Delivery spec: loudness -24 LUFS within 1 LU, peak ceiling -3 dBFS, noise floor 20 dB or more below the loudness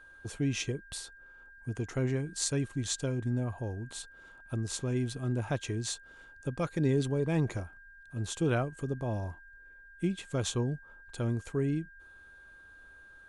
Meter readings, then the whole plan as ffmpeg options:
steady tone 1600 Hz; tone level -52 dBFS; loudness -33.5 LUFS; peak -13.5 dBFS; loudness target -24.0 LUFS
-> -af "bandreject=f=1.6k:w=30"
-af "volume=9.5dB"

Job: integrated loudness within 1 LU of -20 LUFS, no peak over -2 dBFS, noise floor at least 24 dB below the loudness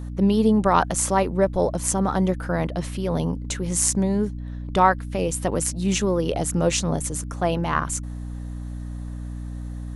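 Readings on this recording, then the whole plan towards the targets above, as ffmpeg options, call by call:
hum 60 Hz; harmonics up to 300 Hz; hum level -29 dBFS; loudness -22.5 LUFS; peak -3.0 dBFS; loudness target -20.0 LUFS
-> -af "bandreject=f=60:t=h:w=6,bandreject=f=120:t=h:w=6,bandreject=f=180:t=h:w=6,bandreject=f=240:t=h:w=6,bandreject=f=300:t=h:w=6"
-af "volume=2.5dB,alimiter=limit=-2dB:level=0:latency=1"

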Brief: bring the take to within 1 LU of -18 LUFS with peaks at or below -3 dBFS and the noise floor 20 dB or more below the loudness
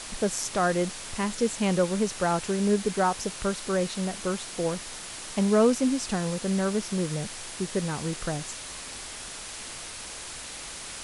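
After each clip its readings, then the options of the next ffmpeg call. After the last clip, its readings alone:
noise floor -40 dBFS; noise floor target -49 dBFS; loudness -28.5 LUFS; peak -11.0 dBFS; loudness target -18.0 LUFS
-> -af "afftdn=nr=9:nf=-40"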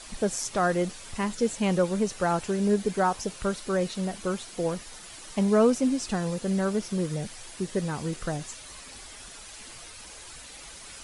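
noise floor -45 dBFS; noise floor target -48 dBFS
-> -af "afftdn=nr=6:nf=-45"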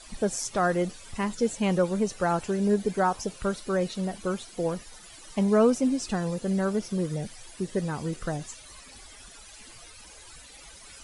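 noise floor -49 dBFS; loudness -28.0 LUFS; peak -11.5 dBFS; loudness target -18.0 LUFS
-> -af "volume=10dB,alimiter=limit=-3dB:level=0:latency=1"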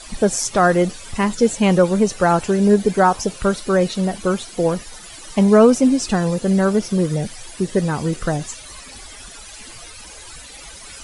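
loudness -18.0 LUFS; peak -3.0 dBFS; noise floor -39 dBFS

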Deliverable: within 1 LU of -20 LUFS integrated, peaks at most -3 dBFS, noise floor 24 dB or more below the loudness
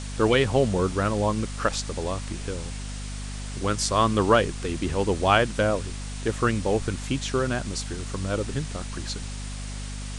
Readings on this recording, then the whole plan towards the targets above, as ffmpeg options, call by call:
hum 50 Hz; harmonics up to 250 Hz; hum level -32 dBFS; noise floor -34 dBFS; noise floor target -50 dBFS; loudness -26.0 LUFS; peak -4.0 dBFS; loudness target -20.0 LUFS
-> -af "bandreject=f=50:t=h:w=4,bandreject=f=100:t=h:w=4,bandreject=f=150:t=h:w=4,bandreject=f=200:t=h:w=4,bandreject=f=250:t=h:w=4"
-af "afftdn=nr=16:nf=-34"
-af "volume=6dB,alimiter=limit=-3dB:level=0:latency=1"

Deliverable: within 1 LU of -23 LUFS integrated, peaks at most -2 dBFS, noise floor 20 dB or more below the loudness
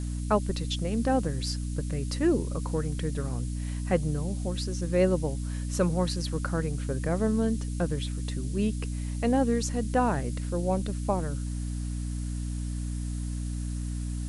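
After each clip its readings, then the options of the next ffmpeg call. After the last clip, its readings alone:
hum 60 Hz; harmonics up to 300 Hz; hum level -30 dBFS; noise floor -33 dBFS; noise floor target -50 dBFS; loudness -29.5 LUFS; peak -11.5 dBFS; loudness target -23.0 LUFS
-> -af "bandreject=f=60:t=h:w=4,bandreject=f=120:t=h:w=4,bandreject=f=180:t=h:w=4,bandreject=f=240:t=h:w=4,bandreject=f=300:t=h:w=4"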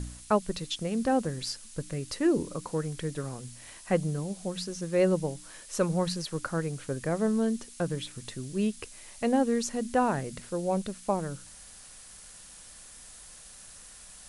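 hum none; noise floor -50 dBFS; noise floor target -51 dBFS
-> -af "afftdn=nr=6:nf=-50"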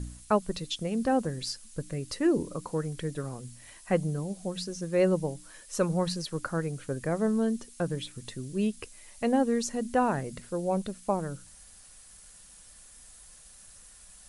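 noise floor -53 dBFS; loudness -30.5 LUFS; peak -13.5 dBFS; loudness target -23.0 LUFS
-> -af "volume=7.5dB"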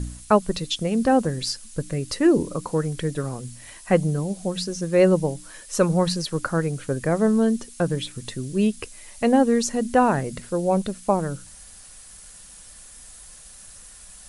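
loudness -23.0 LUFS; peak -6.0 dBFS; noise floor -45 dBFS

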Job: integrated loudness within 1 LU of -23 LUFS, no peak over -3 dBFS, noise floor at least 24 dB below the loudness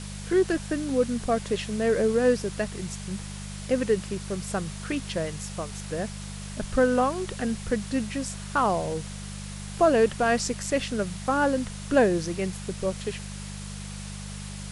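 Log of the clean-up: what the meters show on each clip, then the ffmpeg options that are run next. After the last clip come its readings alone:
hum 50 Hz; harmonics up to 200 Hz; hum level -36 dBFS; noise floor -37 dBFS; noise floor target -51 dBFS; loudness -27.0 LUFS; peak -9.0 dBFS; loudness target -23.0 LUFS
-> -af "bandreject=f=50:t=h:w=4,bandreject=f=100:t=h:w=4,bandreject=f=150:t=h:w=4,bandreject=f=200:t=h:w=4"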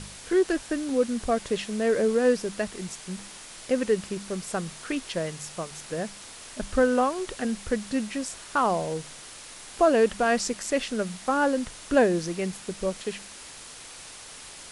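hum none; noise floor -44 dBFS; noise floor target -51 dBFS
-> -af "afftdn=nr=7:nf=-44"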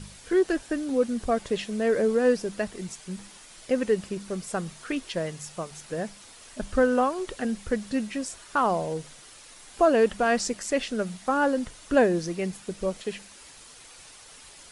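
noise floor -49 dBFS; noise floor target -51 dBFS
-> -af "afftdn=nr=6:nf=-49"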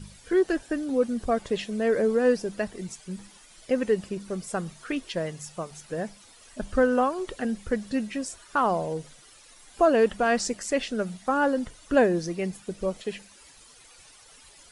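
noise floor -53 dBFS; loudness -27.0 LUFS; peak -9.0 dBFS; loudness target -23.0 LUFS
-> -af "volume=4dB"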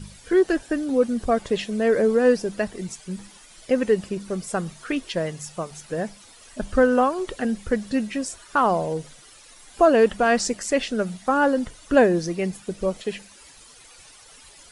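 loudness -23.0 LUFS; peak -5.0 dBFS; noise floor -49 dBFS

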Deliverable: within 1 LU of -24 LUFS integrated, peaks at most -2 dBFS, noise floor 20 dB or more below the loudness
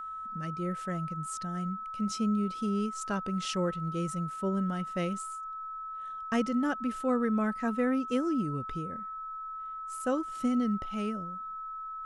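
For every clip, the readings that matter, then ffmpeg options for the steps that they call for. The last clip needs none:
steady tone 1300 Hz; tone level -37 dBFS; loudness -32.5 LUFS; peak -17.0 dBFS; loudness target -24.0 LUFS
-> -af "bandreject=f=1.3k:w=30"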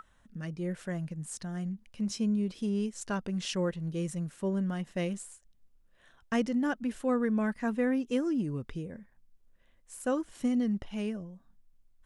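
steady tone none; loudness -33.0 LUFS; peak -17.5 dBFS; loudness target -24.0 LUFS
-> -af "volume=9dB"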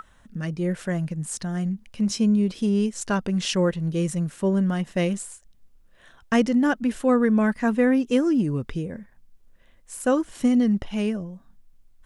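loudness -24.0 LUFS; peak -8.5 dBFS; noise floor -55 dBFS

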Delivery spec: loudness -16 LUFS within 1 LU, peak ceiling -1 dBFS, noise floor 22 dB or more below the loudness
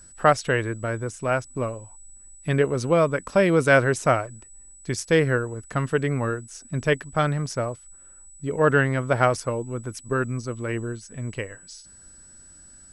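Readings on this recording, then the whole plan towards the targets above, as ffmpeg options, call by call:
steady tone 7900 Hz; tone level -47 dBFS; loudness -24.0 LUFS; peak -4.5 dBFS; loudness target -16.0 LUFS
-> -af "bandreject=f=7.9k:w=30"
-af "volume=8dB,alimiter=limit=-1dB:level=0:latency=1"

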